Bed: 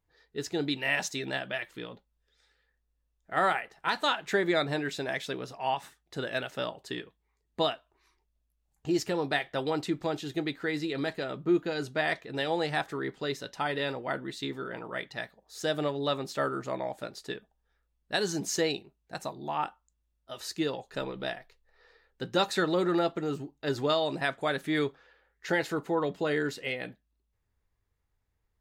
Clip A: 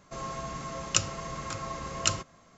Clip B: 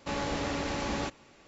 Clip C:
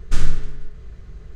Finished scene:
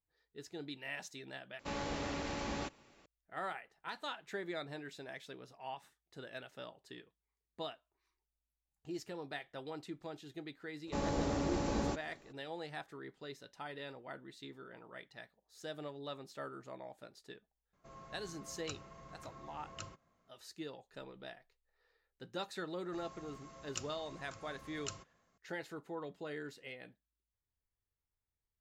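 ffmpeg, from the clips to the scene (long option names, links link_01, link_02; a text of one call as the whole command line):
ffmpeg -i bed.wav -i cue0.wav -i cue1.wav -filter_complex "[2:a]asplit=2[link_01][link_02];[1:a]asplit=2[link_03][link_04];[0:a]volume=-15dB[link_05];[link_02]equalizer=frequency=2500:width=0.53:gain=-11[link_06];[link_03]highshelf=frequency=4000:gain=-10.5[link_07];[link_05]asplit=2[link_08][link_09];[link_08]atrim=end=1.594[link_10];[link_01]atrim=end=1.47,asetpts=PTS-STARTPTS,volume=-7dB[link_11];[link_09]atrim=start=3.056[link_12];[link_06]atrim=end=1.47,asetpts=PTS-STARTPTS,volume=-0.5dB,afade=type=in:duration=0.02,afade=type=out:start_time=1.45:duration=0.02,adelay=10860[link_13];[link_07]atrim=end=2.57,asetpts=PTS-STARTPTS,volume=-16.5dB,afade=type=in:duration=0.004:curve=hsin,afade=type=out:start_time=2.566:duration=0.004:curve=hsin,adelay=17730[link_14];[link_04]atrim=end=2.57,asetpts=PTS-STARTPTS,volume=-17.5dB,afade=type=in:duration=0.004:curve=hsin,afade=type=out:start_time=2.566:duration=0.004:curve=hsin,adelay=22810[link_15];[link_10][link_11]acrossfade=duration=0.004:curve1=hsin:curve2=hsin[link_16];[link_16][link_12]acrossfade=duration=0.004:curve1=hsin:curve2=hsin[link_17];[link_17][link_13][link_14][link_15]amix=inputs=4:normalize=0" out.wav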